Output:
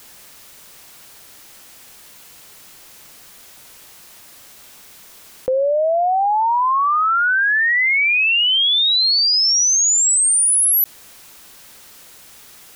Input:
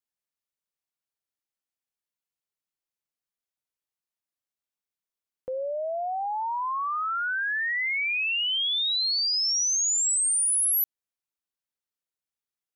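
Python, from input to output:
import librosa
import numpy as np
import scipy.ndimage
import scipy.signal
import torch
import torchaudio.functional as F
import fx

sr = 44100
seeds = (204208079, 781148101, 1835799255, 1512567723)

y = fx.env_flatten(x, sr, amount_pct=70)
y = F.gain(torch.from_numpy(y), 8.5).numpy()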